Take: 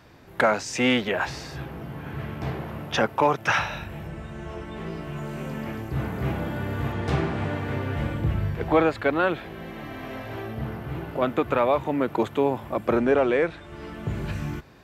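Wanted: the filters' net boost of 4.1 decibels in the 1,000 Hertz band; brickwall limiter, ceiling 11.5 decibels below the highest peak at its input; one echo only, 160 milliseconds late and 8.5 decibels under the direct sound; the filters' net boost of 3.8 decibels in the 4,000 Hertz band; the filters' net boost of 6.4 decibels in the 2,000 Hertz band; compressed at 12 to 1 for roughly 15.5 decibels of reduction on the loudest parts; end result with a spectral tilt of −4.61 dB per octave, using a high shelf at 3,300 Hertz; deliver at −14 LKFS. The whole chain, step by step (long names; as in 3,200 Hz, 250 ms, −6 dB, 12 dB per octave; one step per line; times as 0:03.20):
parametric band 1,000 Hz +3.5 dB
parametric band 2,000 Hz +8 dB
high-shelf EQ 3,300 Hz −7.5 dB
parametric band 4,000 Hz +6.5 dB
downward compressor 12 to 1, threshold −28 dBFS
brickwall limiter −23 dBFS
single-tap delay 160 ms −8.5 dB
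level +19.5 dB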